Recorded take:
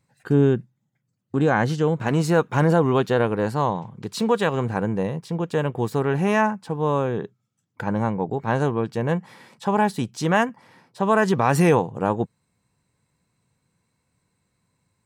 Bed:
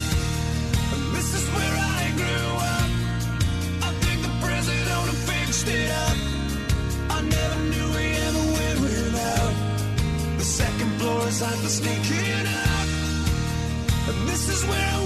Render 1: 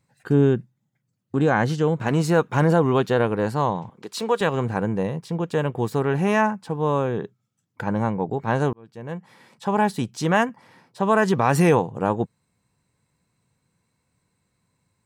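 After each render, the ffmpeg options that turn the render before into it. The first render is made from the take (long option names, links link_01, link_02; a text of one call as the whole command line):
ffmpeg -i in.wav -filter_complex "[0:a]asettb=1/sr,asplit=3[link_01][link_02][link_03];[link_01]atrim=end=3.894[link_04];[link_02]atrim=start=3.89:end=4.41,asetpts=PTS-STARTPTS,afade=type=in:duration=0.004:curve=qsin,afade=type=out:start_time=0.516:duration=0.004:curve=qsin,highpass=350[link_05];[link_03]atrim=start=4.406[link_06];[link_04][link_05]acrossfade=duration=0.004:curve1=hsin:curve2=qsin[link_07];[link_07][link_06]acrossfade=duration=0.004:curve1=qsin:curve2=hsin,asplit=2[link_08][link_09];[link_08]atrim=end=8.73,asetpts=PTS-STARTPTS,afade=type=out:start_time=8.726:duration=0.004:curve=hsin[link_10];[link_09]atrim=start=8.73,asetpts=PTS-STARTPTS,afade=type=in:duration=1.12[link_11];[link_10][link_11]concat=n=2:v=0:a=1" out.wav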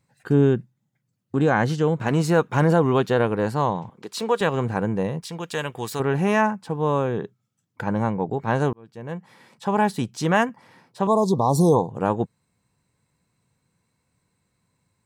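ffmpeg -i in.wav -filter_complex "[0:a]asettb=1/sr,asplit=3[link_01][link_02][link_03];[link_01]atrim=end=5.224[link_04];[link_02]atrim=start=5.22:end=6,asetpts=PTS-STARTPTS,afade=type=in:duration=0.004:curve=qsin,afade=type=out:start_time=0.776:duration=0.004:curve=qsin,tiltshelf=frequency=1200:gain=-8.5[link_05];[link_03]atrim=start=5.996[link_06];[link_04][link_05]acrossfade=duration=0.004:curve1=hsin:curve2=qsin[link_07];[link_07][link_06]acrossfade=duration=0.004:curve1=qsin:curve2=hsin,asettb=1/sr,asplit=3[link_08][link_09][link_10];[link_08]atrim=end=11.074[link_11];[link_09]atrim=start=11.07:end=11.9,asetpts=PTS-STARTPTS,afade=type=in:duration=0.004:curve=qsin,afade=type=out:start_time=0.826:duration=0.004:curve=qsin,asuperstop=centerf=2000:order=20:qfactor=0.83[link_12];[link_10]atrim=start=11.896[link_13];[link_11][link_12]acrossfade=duration=0.004:curve1=hsin:curve2=qsin[link_14];[link_14][link_13]acrossfade=duration=0.004:curve1=qsin:curve2=hsin" out.wav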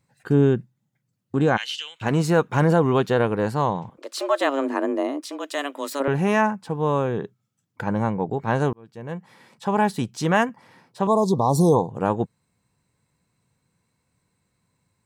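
ffmpeg -i in.wav -filter_complex "[0:a]asplit=3[link_01][link_02][link_03];[link_01]afade=type=out:start_time=1.56:duration=0.02[link_04];[link_02]highpass=frequency=2900:width_type=q:width=5.4,afade=type=in:start_time=1.56:duration=0.02,afade=type=out:start_time=2.01:duration=0.02[link_05];[link_03]afade=type=in:start_time=2.01:duration=0.02[link_06];[link_04][link_05][link_06]amix=inputs=3:normalize=0,asettb=1/sr,asplit=3[link_07][link_08][link_09];[link_07]atrim=end=3.984[link_10];[link_08]atrim=start=3.98:end=6.08,asetpts=PTS-STARTPTS,afade=type=in:duration=0.004:curve=qsin,afade=type=out:start_time=2.096:duration=0.004:curve=qsin,afreqshift=140[link_11];[link_09]atrim=start=6.076[link_12];[link_10][link_11]acrossfade=duration=0.004:curve1=hsin:curve2=qsin[link_13];[link_13][link_12]acrossfade=duration=0.004:curve1=qsin:curve2=hsin" out.wav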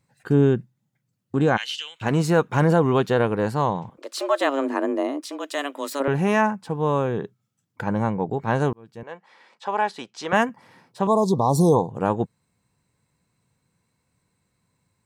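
ffmpeg -i in.wav -filter_complex "[0:a]asettb=1/sr,asplit=3[link_01][link_02][link_03];[link_01]atrim=end=9.034[link_04];[link_02]atrim=start=9.03:end=10.33,asetpts=PTS-STARTPTS,afade=type=in:duration=0.004:curve=qsin,afade=type=out:start_time=1.296:duration=0.004:curve=qsin,highpass=530,lowpass=5200[link_05];[link_03]atrim=start=10.326[link_06];[link_04][link_05]acrossfade=duration=0.004:curve1=hsin:curve2=qsin[link_07];[link_07][link_06]acrossfade=duration=0.004:curve1=qsin:curve2=hsin" out.wav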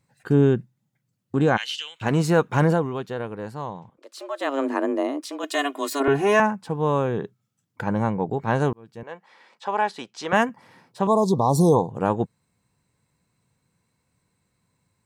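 ffmpeg -i in.wav -filter_complex "[0:a]asettb=1/sr,asplit=3[link_01][link_02][link_03];[link_01]atrim=end=5.434[link_04];[link_02]atrim=start=5.43:end=6.4,asetpts=PTS-STARTPTS,afade=type=in:duration=0.004:curve=qsin,afade=type=out:start_time=0.966:duration=0.004:curve=qsin,aecho=1:1:2.8:1,atrim=end_sample=42777[link_05];[link_03]atrim=start=6.396[link_06];[link_04][link_05]acrossfade=duration=0.004:curve1=hsin:curve2=qsin[link_07];[link_07][link_06]acrossfade=duration=0.004:curve1=qsin:curve2=hsin,asplit=3[link_08][link_09][link_10];[link_08]atrim=end=2.9,asetpts=PTS-STARTPTS,afade=type=out:start_time=2.65:duration=0.25:silence=0.316228[link_11];[link_09]atrim=start=2.9:end=4.36,asetpts=PTS-STARTPTS,volume=-10dB[link_12];[link_10]atrim=start=4.36,asetpts=PTS-STARTPTS,afade=type=in:duration=0.25:silence=0.316228[link_13];[link_11][link_12][link_13]concat=n=3:v=0:a=1" out.wav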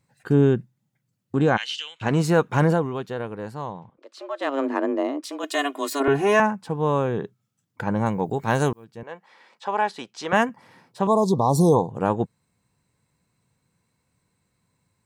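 ffmpeg -i in.wav -filter_complex "[0:a]asettb=1/sr,asplit=3[link_01][link_02][link_03];[link_01]atrim=end=1.384[link_04];[link_02]atrim=start=1.38:end=2.17,asetpts=PTS-STARTPTS,afade=type=in:duration=0.004:curve=qsin,afade=type=out:start_time=0.786:duration=0.004:curve=qsin,lowpass=8300[link_05];[link_03]atrim=start=2.166[link_06];[link_04][link_05]acrossfade=duration=0.004:curve1=hsin:curve2=qsin[link_07];[link_07][link_06]acrossfade=duration=0.004:curve1=qsin:curve2=hsin,asettb=1/sr,asplit=3[link_08][link_09][link_10];[link_08]atrim=end=3.724[link_11];[link_09]atrim=start=3.72:end=5.24,asetpts=PTS-STARTPTS,afade=type=in:duration=0.004:curve=qsin,afade=type=out:start_time=1.516:duration=0.004:curve=qsin,adynamicsmooth=sensitivity=3:basefreq=5000[link_12];[link_10]atrim=start=5.236[link_13];[link_11][link_12]acrossfade=duration=0.004:curve1=hsin:curve2=qsin[link_14];[link_14][link_13]acrossfade=duration=0.004:curve1=qsin:curve2=hsin,asettb=1/sr,asplit=3[link_15][link_16][link_17];[link_15]atrim=end=8.064[link_18];[link_16]atrim=start=8.06:end=8.85,asetpts=PTS-STARTPTS,afade=type=in:duration=0.004:curve=qsin,afade=type=out:start_time=0.786:duration=0.004:curve=qsin,aemphasis=mode=production:type=75kf[link_19];[link_17]atrim=start=8.846[link_20];[link_18][link_19]acrossfade=duration=0.004:curve1=hsin:curve2=qsin[link_21];[link_21][link_20]acrossfade=duration=0.004:curve1=qsin:curve2=hsin" out.wav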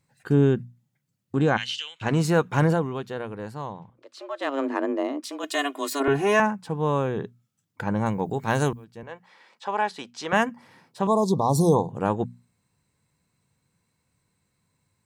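ffmpeg -i in.wav -af "equalizer=frequency=580:width_type=o:width=2.8:gain=-2.5,bandreject=frequency=60:width_type=h:width=6,bandreject=frequency=120:width_type=h:width=6,bandreject=frequency=180:width_type=h:width=6,bandreject=frequency=240:width_type=h:width=6" out.wav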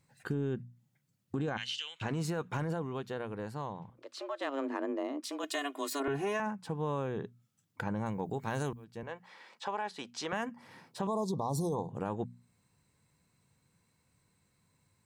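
ffmpeg -i in.wav -af "alimiter=limit=-15.5dB:level=0:latency=1:release=13,acompressor=threshold=-39dB:ratio=2" out.wav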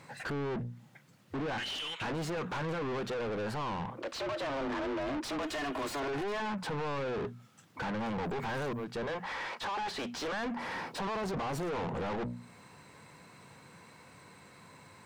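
ffmpeg -i in.wav -filter_complex "[0:a]asplit=2[link_01][link_02];[link_02]highpass=frequency=720:poles=1,volume=34dB,asoftclip=type=tanh:threshold=-21.5dB[link_03];[link_01][link_03]amix=inputs=2:normalize=0,lowpass=frequency=1300:poles=1,volume=-6dB,asoftclip=type=tanh:threshold=-33dB" out.wav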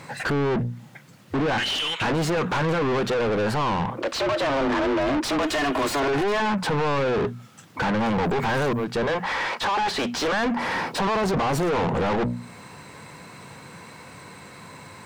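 ffmpeg -i in.wav -af "volume=12dB" out.wav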